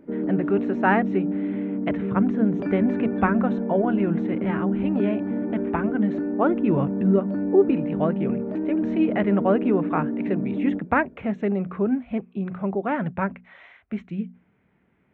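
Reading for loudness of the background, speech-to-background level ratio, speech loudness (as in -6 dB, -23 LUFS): -27.0 LUFS, 1.5 dB, -25.5 LUFS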